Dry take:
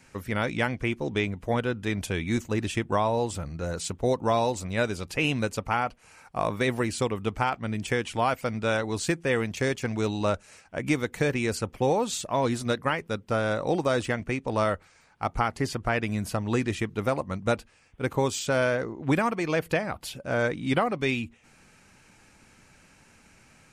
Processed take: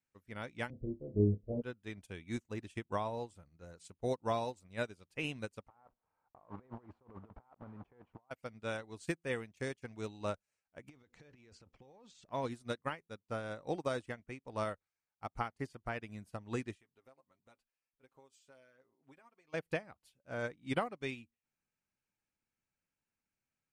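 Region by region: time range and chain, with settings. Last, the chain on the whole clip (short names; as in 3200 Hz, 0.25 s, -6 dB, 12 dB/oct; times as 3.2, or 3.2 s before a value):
0.7–1.62 steep low-pass 610 Hz 48 dB/oct + low shelf 94 Hz +10 dB + flutter echo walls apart 5 m, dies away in 0.39 s
5.68–8.31 block floating point 3-bit + synth low-pass 970 Hz, resonance Q 1.8 + negative-ratio compressor -33 dBFS
10.89–12.32 LPF 6500 Hz 24 dB/oct + transient shaper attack +1 dB, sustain +11 dB + compressor 20:1, threshold -29 dBFS
16.75–19.54 bell 78 Hz -14 dB 2.5 oct + comb 7.5 ms, depth 63% + compressor 2.5:1, threshold -36 dBFS
whole clip: dynamic EQ 9000 Hz, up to +5 dB, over -56 dBFS, Q 4.8; upward expander 2.5:1, over -40 dBFS; gain -5 dB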